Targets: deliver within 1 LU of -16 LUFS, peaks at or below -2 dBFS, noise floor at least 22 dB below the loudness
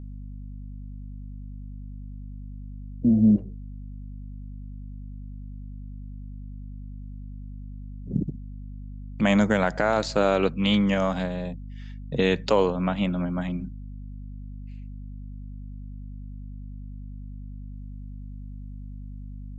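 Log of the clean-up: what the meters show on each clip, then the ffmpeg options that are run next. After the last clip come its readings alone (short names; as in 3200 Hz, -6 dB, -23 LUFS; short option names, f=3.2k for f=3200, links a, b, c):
hum 50 Hz; harmonics up to 250 Hz; hum level -35 dBFS; loudness -24.0 LUFS; peak -8.5 dBFS; loudness target -16.0 LUFS
-> -af "bandreject=f=50:t=h:w=6,bandreject=f=100:t=h:w=6,bandreject=f=150:t=h:w=6,bandreject=f=200:t=h:w=6,bandreject=f=250:t=h:w=6"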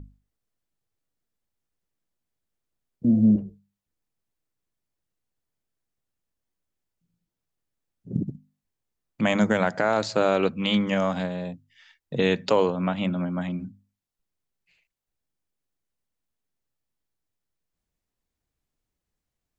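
hum none; loudness -24.5 LUFS; peak -9.0 dBFS; loudness target -16.0 LUFS
-> -af "volume=8.5dB,alimiter=limit=-2dB:level=0:latency=1"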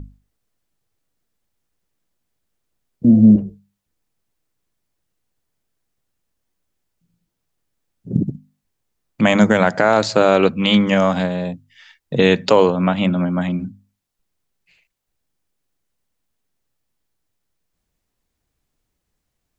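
loudness -16.0 LUFS; peak -2.0 dBFS; noise floor -77 dBFS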